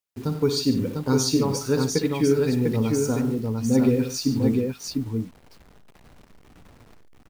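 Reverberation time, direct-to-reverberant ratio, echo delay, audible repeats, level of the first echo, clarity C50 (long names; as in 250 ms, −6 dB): no reverb audible, no reverb audible, 58 ms, 4, −10.0 dB, no reverb audible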